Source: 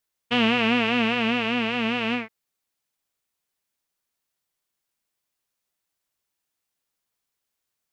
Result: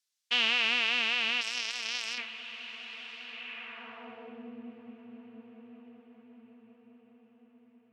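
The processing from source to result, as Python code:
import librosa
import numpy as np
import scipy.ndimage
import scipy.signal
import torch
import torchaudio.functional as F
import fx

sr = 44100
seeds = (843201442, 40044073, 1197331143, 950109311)

y = fx.echo_diffused(x, sr, ms=1093, feedback_pct=50, wet_db=-14)
y = fx.power_curve(y, sr, exponent=2.0, at=(1.41, 2.18))
y = fx.filter_sweep_bandpass(y, sr, from_hz=5200.0, to_hz=300.0, start_s=3.2, end_s=4.52, q=1.1)
y = y * librosa.db_to_amplitude(4.0)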